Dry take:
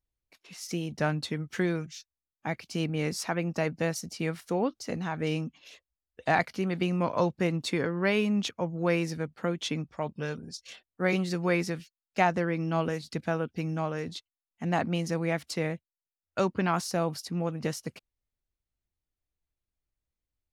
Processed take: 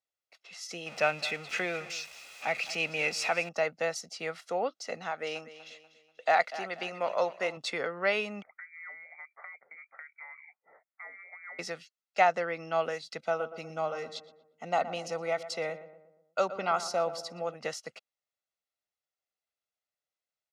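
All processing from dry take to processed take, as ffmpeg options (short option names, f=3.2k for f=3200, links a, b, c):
-filter_complex "[0:a]asettb=1/sr,asplit=3[a][b][c];[a]atrim=end=0.864[d];[b]atrim=start=0.86:end=3.49,asetpts=PTS-STARTPTS,afade=t=in:d=0.004:c=qsin,afade=t=out:st=2.626:d=0.004:c=qsin,aeval=exprs='val(0)+0.5*0.0141*sgn(val(0))':c=same,equalizer=f=2.5k:w=6.2:g=14.5,aecho=1:1:210:0.141,atrim=end_sample=115983[e];[c]atrim=start=3.486[f];[d][e]acrossfade=d=0.004:c1=hsin:c2=qsin[g];[g][f]acrossfade=d=0.004:c1=qsin:c2=hsin,asettb=1/sr,asplit=3[h][i][j];[h]atrim=end=5.114[k];[i]atrim=start=5.11:end=7.57,asetpts=PTS-STARTPTS,afade=t=in:d=0.004:c=qsin,afade=t=out:st=2.456:d=0.004:c=qsin,equalizer=f=100:w=0.69:g=-10,aecho=1:1:243|486|729|972:0.188|0.0753|0.0301|0.0121,atrim=end_sample=108486[l];[j]atrim=start=7.566[m];[k][l]acrossfade=d=0.004:c1=hsin:c2=qsin[n];[n][m]acrossfade=d=0.004:c1=qsin:c2=hsin,asettb=1/sr,asplit=3[o][p][q];[o]atrim=end=8.424[r];[p]atrim=start=8.42:end=11.59,asetpts=PTS-STARTPTS,afade=t=in:d=0.004:c=qsin,afade=t=out:st=3.166:d=0.004:c=qsin,highpass=f=550:p=1,acompressor=threshold=-43dB:ratio=8:attack=3.2:release=140:knee=1:detection=peak,lowpass=f=2.1k:t=q:w=0.5098,lowpass=f=2.1k:t=q:w=0.6013,lowpass=f=2.1k:t=q:w=0.9,lowpass=f=2.1k:t=q:w=2.563,afreqshift=-2500[s];[q]atrim=start=11.586[t];[r][s]acrossfade=d=0.004:c1=hsin:c2=qsin[u];[u][t]acrossfade=d=0.004:c1=qsin:c2=hsin,asettb=1/sr,asplit=3[v][w][x];[v]atrim=end=13.194[y];[w]atrim=start=13.19:end=17.54,asetpts=PTS-STARTPTS,afade=t=in:d=0.004:c=qsin,afade=t=out:st=4.346:d=0.004:c=qsin,asuperstop=centerf=1700:order=12:qfactor=7.1,equalizer=f=2.2k:t=o:w=0.83:g=-3.5,asplit=2[z][aa];[aa]adelay=119,lowpass=f=1.5k:p=1,volume=-12dB,asplit=2[ab][ac];[ac]adelay=119,lowpass=f=1.5k:p=1,volume=0.52,asplit=2[ad][ae];[ae]adelay=119,lowpass=f=1.5k:p=1,volume=0.52,asplit=2[af][ag];[ag]adelay=119,lowpass=f=1.5k:p=1,volume=0.52,asplit=2[ah][ai];[ai]adelay=119,lowpass=f=1.5k:p=1,volume=0.52[aj];[z][ab][ad][af][ah][aj]amix=inputs=6:normalize=0,atrim=end_sample=191835[ak];[x]atrim=start=17.536[al];[y][ak]acrossfade=d=0.004:c1=hsin:c2=qsin[am];[am][al]acrossfade=d=0.004:c1=qsin:c2=hsin,highpass=130,acrossover=split=370 7900:gain=0.112 1 0.141[an][ao][ap];[an][ao][ap]amix=inputs=3:normalize=0,aecho=1:1:1.5:0.5"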